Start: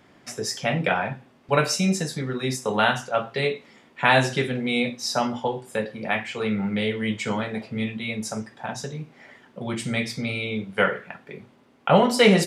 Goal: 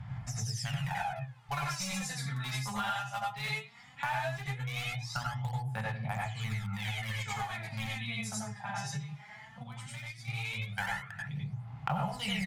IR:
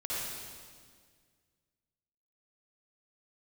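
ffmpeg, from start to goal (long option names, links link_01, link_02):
-filter_complex "[0:a]aecho=1:1:27|68:0.158|0.133,acrossover=split=170[link_01][link_02];[link_01]acompressor=mode=upward:threshold=-42dB:ratio=2.5[link_03];[link_03][link_02]amix=inputs=2:normalize=0,asettb=1/sr,asplit=3[link_04][link_05][link_06];[link_04]atrim=end=4.054[link_07];[link_05]atrim=start=4.05:end=5.65,asetpts=PTS-STARTPTS,afade=type=in:duration=0.004:curve=qsin,afade=type=out:start_time=1.596:duration=0.004:curve=qsin,lowpass=frequency=2200:poles=1[link_08];[link_06]atrim=start=5.646[link_09];[link_07][link_08]acrossfade=duration=0.004:curve1=hsin:curve2=qsin[link_10];[link_10][link_09]acrossfade=duration=0.004:curve1=qsin:curve2=hsin,asplit=2[link_11][link_12];[link_12]aeval=exprs='val(0)*gte(abs(val(0)),0.126)':channel_layout=same,volume=-4.5dB[link_13];[link_11][link_13]amix=inputs=2:normalize=0,firequalizer=gain_entry='entry(120,0);entry(350,-30);entry(780,2);entry(1300,-1)':delay=0.05:min_phase=1,aphaser=in_gain=1:out_gain=1:delay=5:decay=0.73:speed=0.17:type=sinusoidal,equalizer=frequency=130:width_type=o:width=1.3:gain=10[link_14];[1:a]atrim=start_sample=2205,atrim=end_sample=3087,asetrate=26901,aresample=44100[link_15];[link_14][link_15]afir=irnorm=-1:irlink=0,acompressor=threshold=-28dB:ratio=5,asplit=3[link_16][link_17][link_18];[link_16]afade=type=out:start_time=9.62:duration=0.02[link_19];[link_17]aeval=exprs='0.531*(cos(1*acos(clip(val(0)/0.531,-1,1)))-cos(1*PI/2))+0.106*(cos(3*acos(clip(val(0)/0.531,-1,1)))-cos(3*PI/2))+0.0596*(cos(4*acos(clip(val(0)/0.531,-1,1)))-cos(4*PI/2))+0.0376*(cos(6*acos(clip(val(0)/0.531,-1,1)))-cos(6*PI/2))':channel_layout=same,afade=type=in:start_time=9.62:duration=0.02,afade=type=out:start_time=10.27:duration=0.02[link_20];[link_18]afade=type=in:start_time=10.27:duration=0.02[link_21];[link_19][link_20][link_21]amix=inputs=3:normalize=0,volume=-5.5dB"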